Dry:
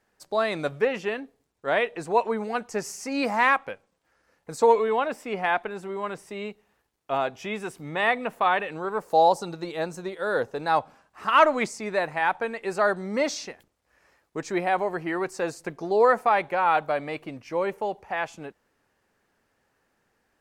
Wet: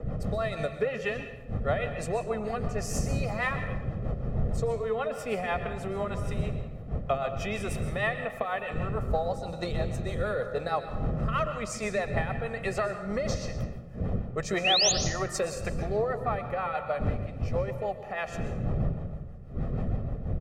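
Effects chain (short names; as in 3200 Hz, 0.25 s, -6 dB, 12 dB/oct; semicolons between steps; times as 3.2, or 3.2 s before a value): wind noise 260 Hz -30 dBFS; comb 1.6 ms, depth 68%; compressor 8:1, threshold -31 dBFS, peak gain reduction 22 dB; rotary speaker horn 6.3 Hz; painted sound rise, 14.64–14.92, 2400–7100 Hz -33 dBFS; on a send at -7 dB: reverb RT60 1.1 s, pre-delay 0.117 s; on the sum: three-band expander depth 40%; gain +6 dB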